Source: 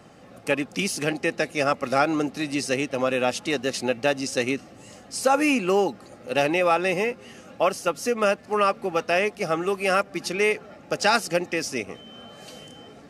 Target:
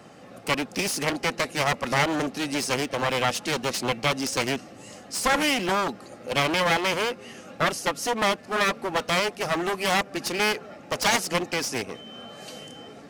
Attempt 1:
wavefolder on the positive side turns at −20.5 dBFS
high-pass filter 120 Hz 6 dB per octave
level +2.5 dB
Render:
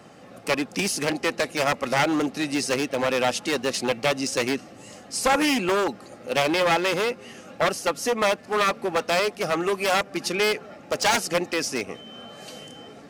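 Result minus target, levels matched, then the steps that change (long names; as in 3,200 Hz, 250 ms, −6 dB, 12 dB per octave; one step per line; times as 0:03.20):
wavefolder on the positive side: distortion −9 dB
change: wavefolder on the positive side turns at −27 dBFS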